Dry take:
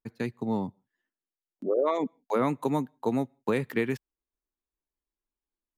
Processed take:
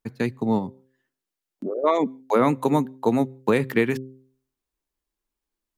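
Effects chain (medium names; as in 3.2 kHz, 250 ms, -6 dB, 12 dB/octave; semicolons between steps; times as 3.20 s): 0.58–1.84 s: compression 6:1, threshold -33 dBFS, peak gain reduction 11.5 dB; de-hum 131.1 Hz, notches 4; trim +7 dB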